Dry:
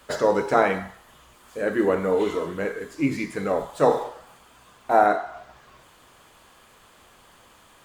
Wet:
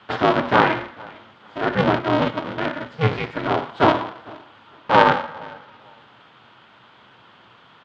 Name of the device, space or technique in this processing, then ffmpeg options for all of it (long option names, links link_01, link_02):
ring modulator pedal into a guitar cabinet: -filter_complex "[0:a]asplit=3[link_01][link_02][link_03];[link_01]afade=type=out:start_time=1.94:duration=0.02[link_04];[link_02]agate=range=-7dB:threshold=-24dB:ratio=16:detection=peak,afade=type=in:start_time=1.94:duration=0.02,afade=type=out:start_time=2.44:duration=0.02[link_05];[link_03]afade=type=in:start_time=2.44:duration=0.02[link_06];[link_04][link_05][link_06]amix=inputs=3:normalize=0,aecho=1:1:451|902:0.0668|0.0147,aeval=exprs='val(0)*sgn(sin(2*PI*160*n/s))':channel_layout=same,highpass=110,equalizer=frequency=120:width_type=q:width=4:gain=9,equalizer=frequency=230:width_type=q:width=4:gain=3,equalizer=frequency=950:width_type=q:width=4:gain=4,equalizer=frequency=1400:width_type=q:width=4:gain=5,equalizer=frequency=3200:width_type=q:width=4:gain=5,lowpass=frequency=4000:width=0.5412,lowpass=frequency=4000:width=1.3066,volume=1.5dB"